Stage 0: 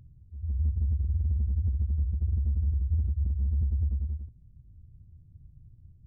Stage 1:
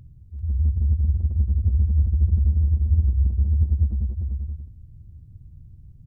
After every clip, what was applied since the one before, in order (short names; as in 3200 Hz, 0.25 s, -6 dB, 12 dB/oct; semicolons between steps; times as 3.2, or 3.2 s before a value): echo 0.392 s -4.5 dB; gain +6.5 dB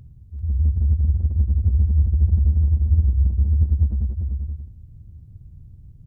minimum comb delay 0.3 ms; gain +2 dB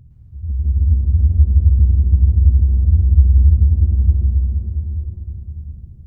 low shelf 460 Hz +5.5 dB; plate-style reverb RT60 4.5 s, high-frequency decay 0.75×, pre-delay 0.1 s, DRR -4 dB; gain -6 dB